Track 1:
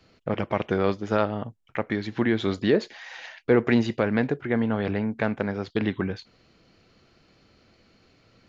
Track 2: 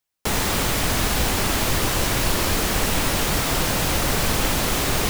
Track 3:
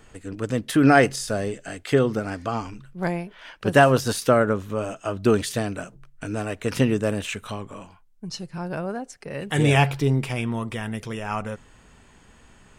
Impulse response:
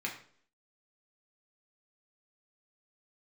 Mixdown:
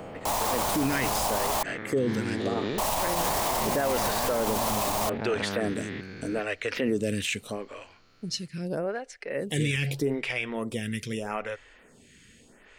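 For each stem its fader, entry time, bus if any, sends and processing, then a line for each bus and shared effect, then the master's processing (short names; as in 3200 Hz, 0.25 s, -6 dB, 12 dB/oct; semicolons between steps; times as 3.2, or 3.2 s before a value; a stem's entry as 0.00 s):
-4.5 dB, 0.00 s, no send, stepped spectrum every 0.4 s; LFO bell 0.4 Hz 780–2200 Hz +8 dB
-9.0 dB, 0.00 s, muted 1.63–2.78, no send, band shelf 800 Hz +15.5 dB 1.2 oct
-6.0 dB, 0.00 s, no send, graphic EQ 125/250/500/1000/2000/4000 Hz +3/+5/+9/-4/+11/+4 dB; photocell phaser 0.8 Hz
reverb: off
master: high shelf 3500 Hz +9.5 dB; limiter -17.5 dBFS, peak gain reduction 14 dB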